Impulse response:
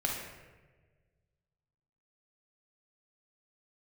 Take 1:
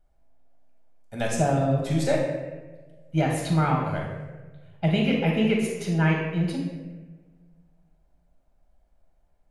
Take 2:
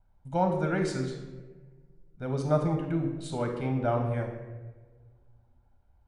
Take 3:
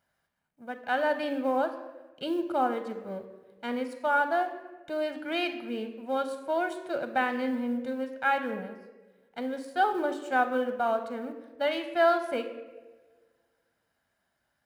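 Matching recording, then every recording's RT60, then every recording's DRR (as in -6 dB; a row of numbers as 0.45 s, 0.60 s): 1; 1.4 s, 1.4 s, 1.4 s; -1.5 dB, 3.0 dB, 8.0 dB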